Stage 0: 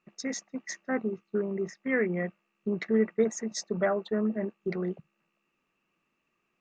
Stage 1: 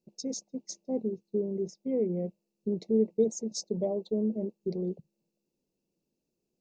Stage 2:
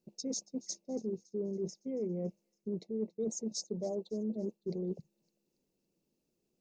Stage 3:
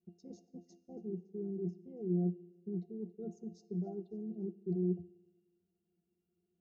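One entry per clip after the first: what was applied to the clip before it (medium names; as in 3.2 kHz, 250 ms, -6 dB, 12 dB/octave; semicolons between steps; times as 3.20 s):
elliptic band-stop 530–4400 Hz, stop band 80 dB; high-order bell 1.4 kHz +15.5 dB
reverse; compression 6:1, threshold -35 dBFS, peak gain reduction 14.5 dB; reverse; feedback echo behind a high-pass 280 ms, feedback 50%, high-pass 2.9 kHz, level -19.5 dB; trim +1.5 dB
pitch-class resonator F, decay 0.14 s; on a send at -16 dB: reverberation RT60 1.2 s, pre-delay 11 ms; on the sum: trim +7 dB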